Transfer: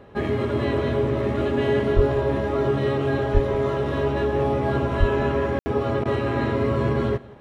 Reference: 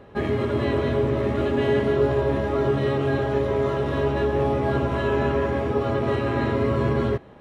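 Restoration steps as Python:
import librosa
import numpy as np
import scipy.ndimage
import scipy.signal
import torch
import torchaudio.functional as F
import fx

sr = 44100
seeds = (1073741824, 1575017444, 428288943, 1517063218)

y = fx.fix_deplosive(x, sr, at_s=(1.95, 3.33, 4.99))
y = fx.fix_ambience(y, sr, seeds[0], print_start_s=6.89, print_end_s=7.39, start_s=5.59, end_s=5.66)
y = fx.fix_interpolate(y, sr, at_s=(6.04,), length_ms=12.0)
y = fx.fix_echo_inverse(y, sr, delay_ms=178, level_db=-22.0)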